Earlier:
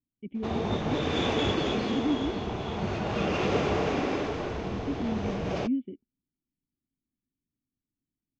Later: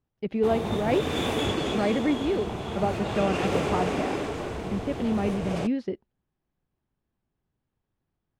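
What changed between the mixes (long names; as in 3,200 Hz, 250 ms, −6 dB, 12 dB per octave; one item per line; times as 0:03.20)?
speech: remove formant resonators in series i
master: remove Butterworth low-pass 6,500 Hz 48 dB per octave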